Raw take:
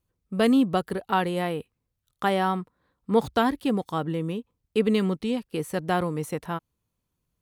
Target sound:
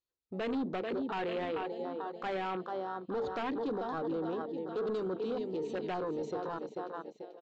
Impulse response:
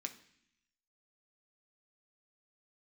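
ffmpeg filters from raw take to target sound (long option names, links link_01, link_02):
-filter_complex "[0:a]lowshelf=frequency=250:width_type=q:width=1.5:gain=-9.5,bandreject=frequency=50:width_type=h:width=6,bandreject=frequency=100:width_type=h:width=6,bandreject=frequency=150:width_type=h:width=6,bandreject=frequency=200:width_type=h:width=6,bandreject=frequency=250:width_type=h:width=6,bandreject=frequency=300:width_type=h:width=6,bandreject=frequency=350:width_type=h:width=6,bandreject=frequency=400:width_type=h:width=6,bandreject=frequency=450:width_type=h:width=6,aecho=1:1:439|878|1317|1756|2195:0.282|0.138|0.0677|0.0332|0.0162,aresample=16000,asoftclip=type=tanh:threshold=-25.5dB,aresample=44100,afwtdn=0.0126,equalizer=frequency=4100:width_type=o:width=0.76:gain=11.5,asplit=2[link_01][link_02];[1:a]atrim=start_sample=2205,afade=type=out:start_time=0.14:duration=0.01,atrim=end_sample=6615[link_03];[link_02][link_03]afir=irnorm=-1:irlink=0,volume=-15.5dB[link_04];[link_01][link_04]amix=inputs=2:normalize=0,alimiter=level_in=5.5dB:limit=-24dB:level=0:latency=1:release=14,volume=-5.5dB"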